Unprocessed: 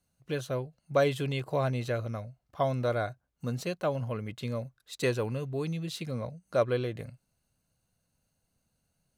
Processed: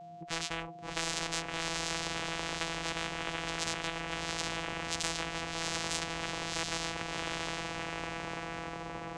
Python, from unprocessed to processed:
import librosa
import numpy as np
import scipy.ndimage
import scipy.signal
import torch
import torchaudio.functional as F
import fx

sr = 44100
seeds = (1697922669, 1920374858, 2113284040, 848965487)

p1 = x + fx.echo_diffused(x, sr, ms=707, feedback_pct=47, wet_db=-4.0, dry=0)
p2 = fx.vocoder(p1, sr, bands=4, carrier='saw', carrier_hz=165.0)
p3 = p2 + 10.0 ** (-43.0 / 20.0) * np.sin(2.0 * np.pi * 700.0 * np.arange(len(p2)) / sr)
y = fx.spectral_comp(p3, sr, ratio=10.0)